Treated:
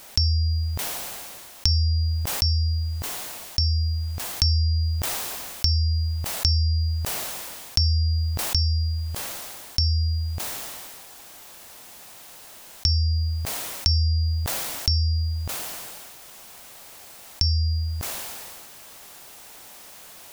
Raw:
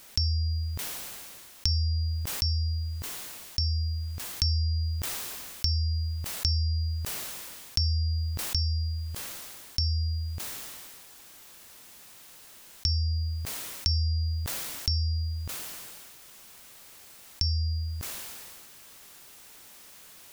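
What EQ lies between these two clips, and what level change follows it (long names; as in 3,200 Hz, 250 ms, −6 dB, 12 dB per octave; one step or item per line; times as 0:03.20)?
parametric band 720 Hz +6.5 dB 0.93 octaves
+5.5 dB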